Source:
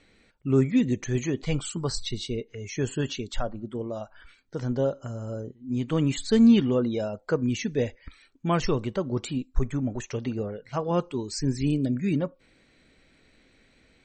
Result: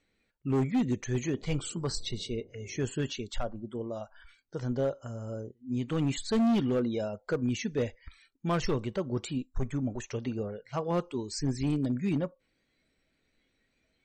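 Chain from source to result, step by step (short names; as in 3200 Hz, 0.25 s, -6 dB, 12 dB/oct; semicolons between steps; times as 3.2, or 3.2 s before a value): overloaded stage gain 19 dB; 1.22–2.85 band noise 73–420 Hz -49 dBFS; spectral noise reduction 11 dB; gain -3.5 dB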